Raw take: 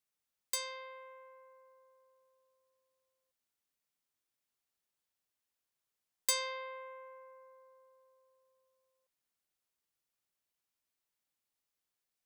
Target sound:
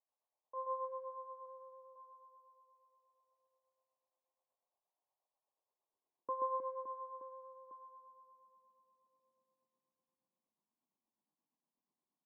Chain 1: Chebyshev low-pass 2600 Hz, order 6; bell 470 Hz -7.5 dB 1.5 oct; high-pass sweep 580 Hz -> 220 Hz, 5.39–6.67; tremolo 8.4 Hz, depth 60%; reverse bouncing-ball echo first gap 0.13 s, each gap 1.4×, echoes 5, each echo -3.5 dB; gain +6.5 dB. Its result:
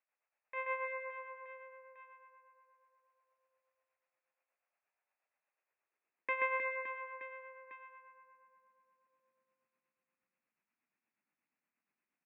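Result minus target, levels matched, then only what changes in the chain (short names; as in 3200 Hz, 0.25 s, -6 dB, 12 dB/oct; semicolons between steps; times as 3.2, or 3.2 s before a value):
1000 Hz band -5.0 dB
change: Chebyshev low-pass 1100 Hz, order 6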